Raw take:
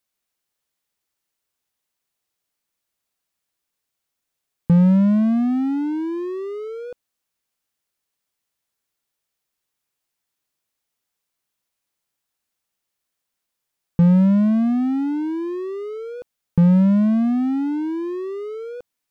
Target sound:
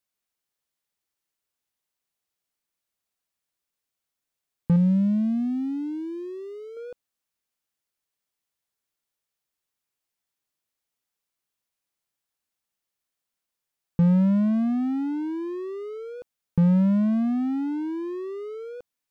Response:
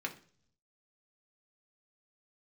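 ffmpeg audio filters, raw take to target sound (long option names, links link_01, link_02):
-filter_complex "[0:a]asettb=1/sr,asplit=3[link_01][link_02][link_03];[link_01]atrim=end=4.764[link_04];[link_02]atrim=start=4.76:end=6.77,asetpts=PTS-STARTPTS,afade=type=in:duration=0.004:curve=qsin,afade=type=out:start_time=2.006:duration=0.004:curve=qsin,equalizer=frequency=1100:width=0.76:gain=-13[link_05];[link_03]atrim=start=6.766[link_06];[link_04][link_05]acrossfade=duration=0.004:curve1=hsin:curve2=qsin[link_07];[link_07][link_06]acrossfade=duration=0.004:curve1=qsin:curve2=hsin,volume=-5dB"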